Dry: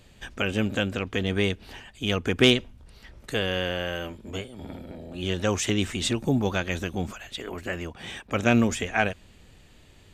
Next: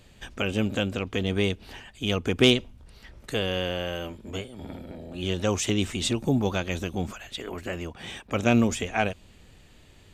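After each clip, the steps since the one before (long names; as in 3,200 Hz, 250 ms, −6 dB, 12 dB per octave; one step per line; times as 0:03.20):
dynamic equaliser 1,700 Hz, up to −6 dB, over −44 dBFS, Q 2.3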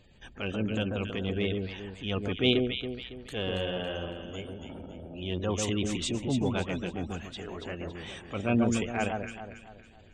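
gate on every frequency bin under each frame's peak −25 dB strong
delay that swaps between a low-pass and a high-pass 139 ms, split 1,400 Hz, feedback 62%, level −4 dB
transient designer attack −6 dB, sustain −2 dB
level −4 dB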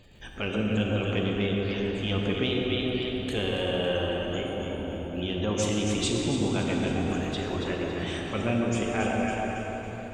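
downward compressor, threshold −30 dBFS, peak gain reduction 11 dB
surface crackle 71 per second −59 dBFS
convolution reverb RT60 5.0 s, pre-delay 8 ms, DRR −0.5 dB
level +4.5 dB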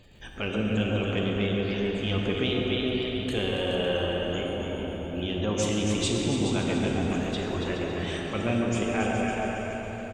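single-tap delay 422 ms −9.5 dB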